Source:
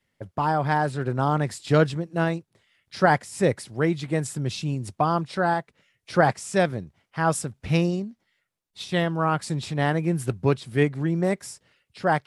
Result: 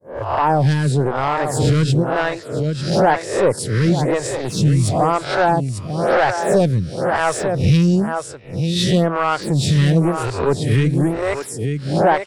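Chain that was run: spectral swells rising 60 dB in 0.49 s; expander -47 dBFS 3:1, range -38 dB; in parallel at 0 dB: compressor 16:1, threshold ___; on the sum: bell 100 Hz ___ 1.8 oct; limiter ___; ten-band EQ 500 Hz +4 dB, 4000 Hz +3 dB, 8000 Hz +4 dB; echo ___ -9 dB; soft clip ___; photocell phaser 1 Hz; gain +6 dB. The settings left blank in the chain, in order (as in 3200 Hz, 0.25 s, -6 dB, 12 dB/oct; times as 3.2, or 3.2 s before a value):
-29 dBFS, +8.5 dB, -8 dBFS, 0.895 s, -13 dBFS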